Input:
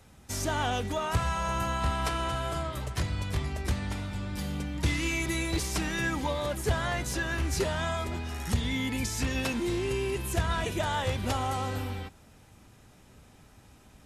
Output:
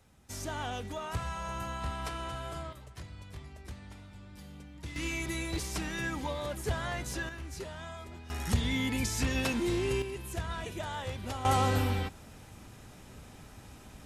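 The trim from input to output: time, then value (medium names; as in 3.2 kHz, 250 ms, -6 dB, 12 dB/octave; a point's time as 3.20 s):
-7.5 dB
from 2.73 s -15 dB
from 4.96 s -5 dB
from 7.29 s -12.5 dB
from 8.30 s -0.5 dB
from 10.02 s -8 dB
from 11.45 s +5 dB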